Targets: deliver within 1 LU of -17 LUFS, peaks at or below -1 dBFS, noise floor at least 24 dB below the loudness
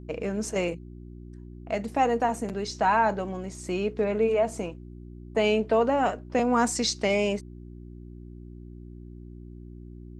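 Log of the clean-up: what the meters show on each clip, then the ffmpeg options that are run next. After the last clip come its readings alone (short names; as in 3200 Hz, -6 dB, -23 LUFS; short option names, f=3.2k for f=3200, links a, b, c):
hum 60 Hz; harmonics up to 360 Hz; hum level -40 dBFS; loudness -26.5 LUFS; peak -11.5 dBFS; loudness target -17.0 LUFS
-> -af "bandreject=f=60:t=h:w=4,bandreject=f=120:t=h:w=4,bandreject=f=180:t=h:w=4,bandreject=f=240:t=h:w=4,bandreject=f=300:t=h:w=4,bandreject=f=360:t=h:w=4"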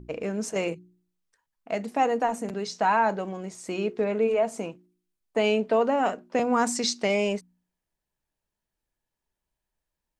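hum none; loudness -26.5 LUFS; peak -11.5 dBFS; loudness target -17.0 LUFS
-> -af "volume=9.5dB"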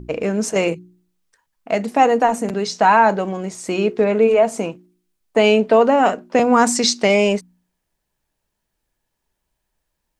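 loudness -17.0 LUFS; peak -2.0 dBFS; noise floor -77 dBFS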